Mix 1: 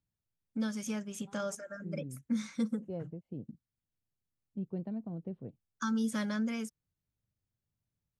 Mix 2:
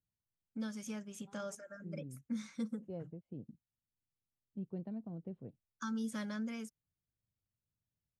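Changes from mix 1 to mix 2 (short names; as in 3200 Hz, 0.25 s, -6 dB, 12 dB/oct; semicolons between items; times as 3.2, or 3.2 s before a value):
first voice -6.5 dB; second voice -4.5 dB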